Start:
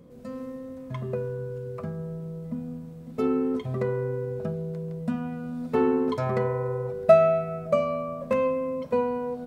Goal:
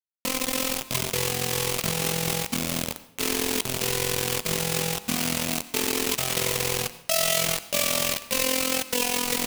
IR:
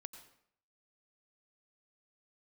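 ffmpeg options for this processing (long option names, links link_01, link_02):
-filter_complex "[0:a]areverse,acompressor=threshold=-34dB:ratio=12,areverse,acrusher=bits=5:mix=0:aa=0.000001,tremolo=f=43:d=0.75,aexciter=amount=2.5:drive=7.4:freq=2200,asplit=2[link_01][link_02];[1:a]atrim=start_sample=2205[link_03];[link_02][link_03]afir=irnorm=-1:irlink=0,volume=4.5dB[link_04];[link_01][link_04]amix=inputs=2:normalize=0,volume=3.5dB"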